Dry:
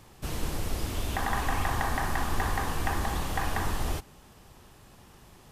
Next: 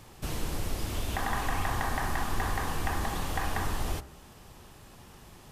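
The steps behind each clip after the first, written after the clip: de-hum 66.1 Hz, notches 31; in parallel at 0 dB: compression, threshold -36 dBFS, peak gain reduction 13 dB; on the sum: trim -3.5 dB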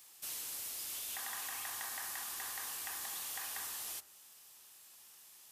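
differentiator; trim +1 dB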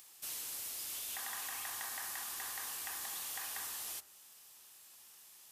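upward compressor, threshold -57 dBFS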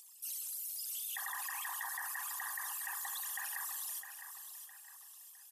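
resonances exaggerated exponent 3; feedback delay 659 ms, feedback 39%, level -9 dB; trim +1 dB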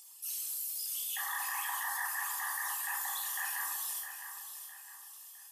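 simulated room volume 830 m³, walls furnished, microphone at 4.1 m

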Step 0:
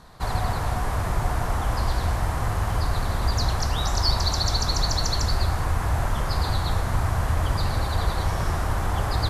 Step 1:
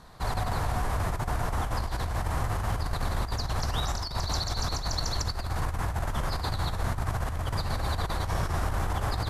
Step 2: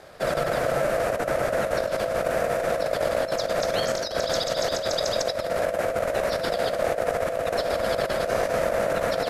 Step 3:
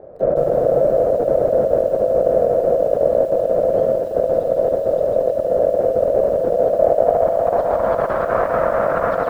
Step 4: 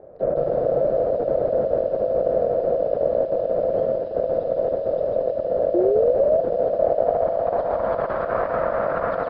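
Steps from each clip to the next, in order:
compressor with a negative ratio -24 dBFS, ratio -0.5; trim -4 dB
ring modulator 590 Hz; trim +6.5 dB
low-pass sweep 520 Hz -> 1.2 kHz, 6.53–8.28 s; bit-crushed delay 162 ms, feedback 35%, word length 7-bit, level -14 dB; trim +4 dB
painted sound rise, 5.74–6.41 s, 340–680 Hz -14 dBFS; resampled via 11.025 kHz; trim -5 dB

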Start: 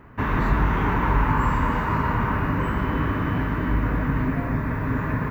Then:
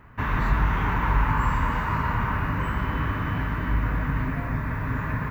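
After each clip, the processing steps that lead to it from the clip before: peaking EQ 350 Hz -8 dB 2 oct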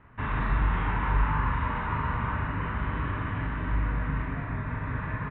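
steep low-pass 3.9 kHz 96 dB/octave; doubling 41 ms -4.5 dB; trim -5.5 dB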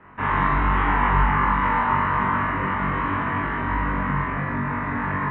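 three-band isolator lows -14 dB, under 180 Hz, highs -15 dB, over 3.1 kHz; flutter echo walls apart 3.6 m, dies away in 0.46 s; trim +7.5 dB

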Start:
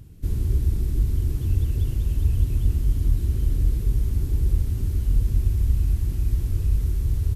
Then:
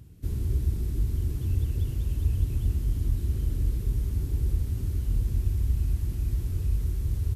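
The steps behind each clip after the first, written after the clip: high-pass 41 Hz; trim -3.5 dB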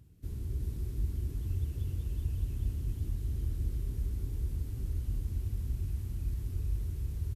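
delay 367 ms -3.5 dB; trim -9 dB

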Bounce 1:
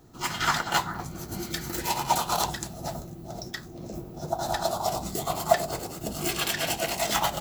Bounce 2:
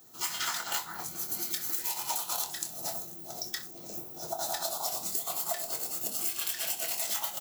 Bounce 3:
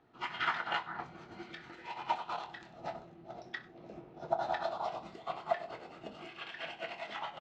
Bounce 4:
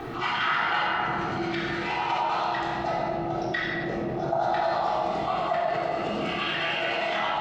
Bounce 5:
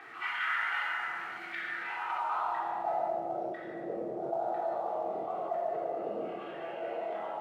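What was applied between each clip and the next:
RIAA curve recording; on a send: early reflections 24 ms -8.5 dB, 63 ms -18 dB; on the sum: compression 6:1, threshold -25 dBFS, peak gain reduction 13 dB; trim -4.5 dB
low-pass 2.7 kHz 24 dB/octave; delay 97 ms -17.5 dB; upward expansion 1.5:1, over -47 dBFS; trim +5 dB
simulated room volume 1300 m³, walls mixed, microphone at 3.6 m; level flattener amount 70%
treble shelf 6.7 kHz -9 dB; modulation noise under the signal 17 dB; band-pass sweep 1.9 kHz -> 500 Hz, 1.63–3.62 s; trim -1.5 dB

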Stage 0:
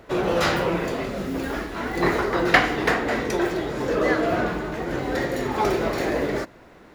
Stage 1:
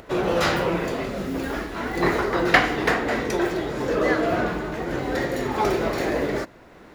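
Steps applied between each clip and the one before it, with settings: upward compressor, threshold -41 dBFS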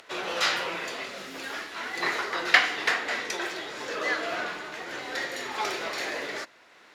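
band-pass filter 4.1 kHz, Q 0.62; trim +2.5 dB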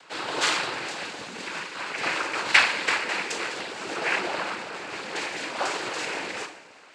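two-slope reverb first 0.45 s, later 2.3 s, from -17 dB, DRR 1.5 dB; noise-vocoded speech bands 8

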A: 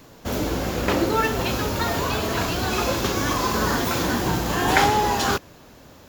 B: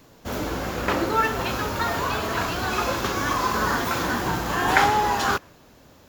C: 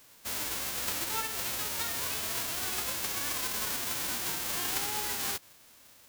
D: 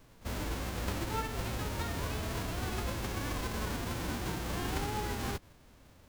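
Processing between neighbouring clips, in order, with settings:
dynamic bell 1.3 kHz, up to +7 dB, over -37 dBFS, Q 0.84; trim -4.5 dB
formants flattened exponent 0.1; compression 5:1, threshold -25 dBFS, peak gain reduction 11 dB; trim -5 dB
tilt EQ -4 dB/octave; pre-echo 44 ms -19 dB

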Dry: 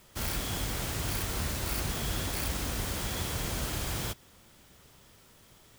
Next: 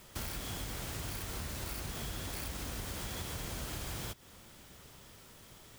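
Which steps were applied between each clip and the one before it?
compression 6:1, threshold -40 dBFS, peak gain reduction 11.5 dB; trim +2.5 dB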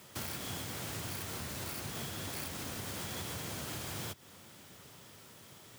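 high-pass 90 Hz 24 dB/octave; trim +1 dB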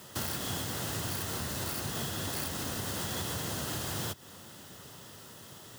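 band-stop 2.3 kHz, Q 5.4; trim +5.5 dB

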